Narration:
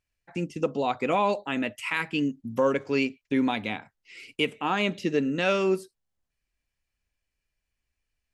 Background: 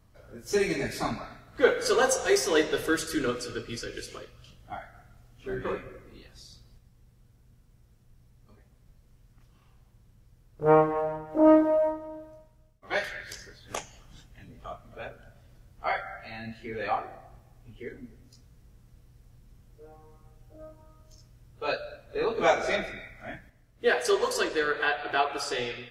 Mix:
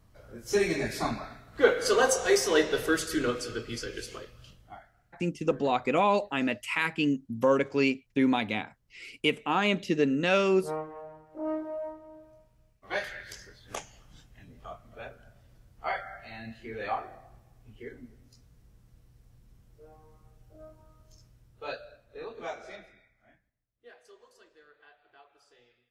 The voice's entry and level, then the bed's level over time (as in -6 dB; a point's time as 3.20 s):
4.85 s, 0.0 dB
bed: 4.48 s 0 dB
4.96 s -15 dB
11.48 s -15 dB
12.69 s -3 dB
21.25 s -3 dB
24.17 s -31.5 dB